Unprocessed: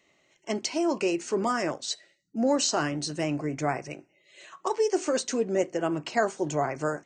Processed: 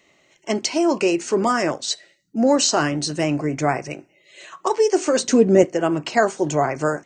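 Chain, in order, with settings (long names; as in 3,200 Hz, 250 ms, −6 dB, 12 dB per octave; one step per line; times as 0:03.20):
0:05.18–0:05.65: low-shelf EQ 330 Hz +11.5 dB
level +7.5 dB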